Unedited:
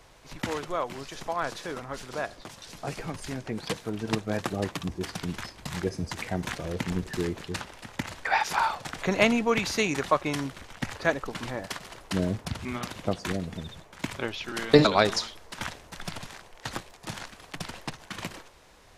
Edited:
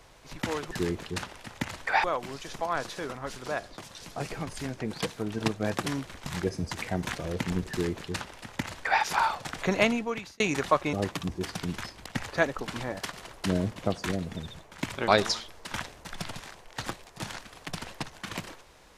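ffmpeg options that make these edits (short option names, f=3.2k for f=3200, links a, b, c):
-filter_complex "[0:a]asplit=10[a][b][c][d][e][f][g][h][i][j];[a]atrim=end=0.712[k];[b]atrim=start=7.088:end=8.422[l];[c]atrim=start=0.708:end=4.532[m];[d]atrim=start=10.328:end=10.732[n];[e]atrim=start=5.658:end=9.8,asetpts=PTS-STARTPTS,afade=t=out:st=3.432:d=0.71[o];[f]atrim=start=9.8:end=10.332,asetpts=PTS-STARTPTS,afade=t=in:d=0.004:c=hsin[p];[g]atrim=start=4.528:end=5.662[q];[h]atrim=start=10.728:end=12.432[r];[i]atrim=start=12.968:end=14.292[s];[j]atrim=start=14.948[t];[k][l]acrossfade=d=0.004:c1=hsin:c2=hsin[u];[u][m]acrossfade=d=0.004:c1=hsin:c2=hsin[v];[v][n]acrossfade=d=0.004:c1=hsin:c2=hsin[w];[o][p]concat=n=2:v=0:a=1[x];[w][x]acrossfade=d=0.004:c1=hsin:c2=hsin[y];[y][q]acrossfade=d=0.004:c1=hsin:c2=hsin[z];[z][r]acrossfade=d=0.004:c1=hsin:c2=hsin[aa];[aa][s]acrossfade=d=0.004:c1=hsin:c2=hsin[ab];[ab][t]acrossfade=d=0.004:c1=hsin:c2=hsin"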